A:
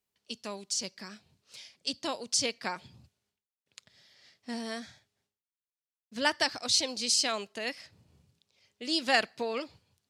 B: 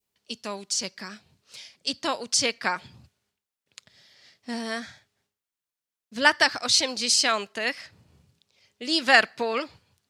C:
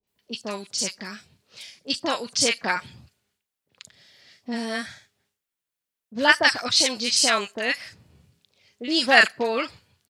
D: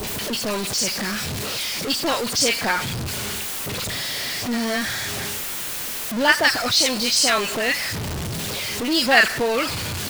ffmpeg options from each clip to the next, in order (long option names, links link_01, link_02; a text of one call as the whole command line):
ffmpeg -i in.wav -af "adynamicequalizer=threshold=0.00501:dfrequency=1500:dqfactor=0.97:tfrequency=1500:tqfactor=0.97:attack=5:release=100:ratio=0.375:range=3.5:mode=boostabove:tftype=bell,volume=4.5dB" out.wav
ffmpeg -i in.wav -filter_complex "[0:a]acrossover=split=1000|5900[link_01][link_02][link_03];[link_02]adelay=30[link_04];[link_03]adelay=70[link_05];[link_01][link_04][link_05]amix=inputs=3:normalize=0,volume=3.5dB" out.wav
ffmpeg -i in.wav -af "aeval=exprs='val(0)+0.5*0.0944*sgn(val(0))':channel_layout=same,volume=-1dB" out.wav